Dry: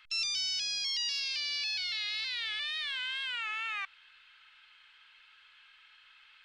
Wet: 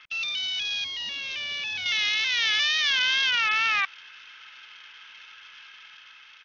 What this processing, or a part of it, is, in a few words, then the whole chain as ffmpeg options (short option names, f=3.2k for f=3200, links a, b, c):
Bluetooth headset: -filter_complex "[0:a]asettb=1/sr,asplit=3[a][b][c];[a]atrim=end=0.844[d];[b]atrim=start=0.84:end=1.86,asetpts=PTS-STARTPTS,afade=t=in:d=0.004:c=qsin,afade=t=out:st=1.016:d=0.004:c=qsin,tiltshelf=f=790:g=7.5[e];[c]atrim=start=1.856[f];[d][e]acrossfade=d=0.004:c1=hsin:c2=qsin[g];[g][f]acrossfade=d=0.004:c1=qsin:c2=hsin,highpass=f=160:p=1,dynaudnorm=f=390:g=5:m=4dB,aresample=8000,aresample=44100,volume=8.5dB" -ar 48000 -c:a sbc -b:a 64k